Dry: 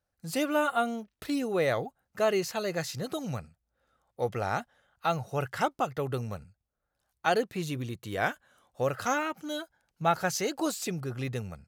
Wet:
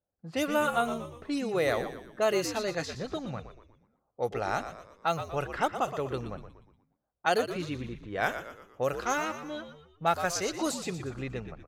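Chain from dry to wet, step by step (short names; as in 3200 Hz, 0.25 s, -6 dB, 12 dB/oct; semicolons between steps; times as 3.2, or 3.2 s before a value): 8.96–10.59 G.711 law mismatch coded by A; low shelf 110 Hz -11.5 dB; low-pass opened by the level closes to 700 Hz, open at -25 dBFS; tone controls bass 0 dB, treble +3 dB; frequency-shifting echo 0.119 s, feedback 45%, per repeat -75 Hz, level -10 dB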